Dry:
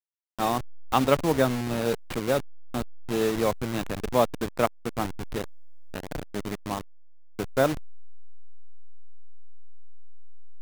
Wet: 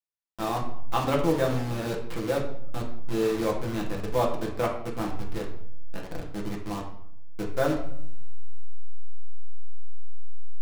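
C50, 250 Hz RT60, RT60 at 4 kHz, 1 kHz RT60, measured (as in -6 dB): 6.5 dB, 0.85 s, 0.50 s, 0.65 s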